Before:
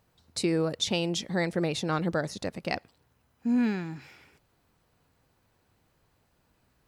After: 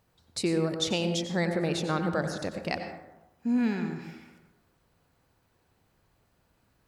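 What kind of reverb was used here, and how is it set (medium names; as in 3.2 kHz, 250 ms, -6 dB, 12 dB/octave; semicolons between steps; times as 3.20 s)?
plate-style reverb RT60 0.99 s, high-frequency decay 0.35×, pre-delay 80 ms, DRR 6 dB; trim -1 dB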